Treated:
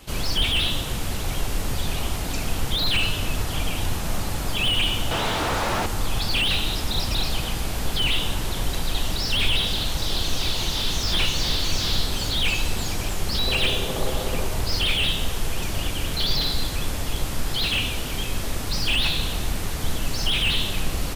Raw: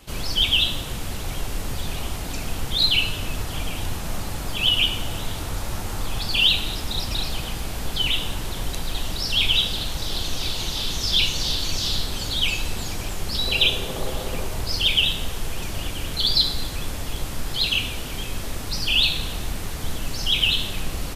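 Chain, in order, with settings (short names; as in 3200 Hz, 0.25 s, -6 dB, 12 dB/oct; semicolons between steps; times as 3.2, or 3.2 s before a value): 5.11–5.86 overdrive pedal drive 26 dB, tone 1500 Hz, clips at -15 dBFS; slew limiter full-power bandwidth 190 Hz; gain +2.5 dB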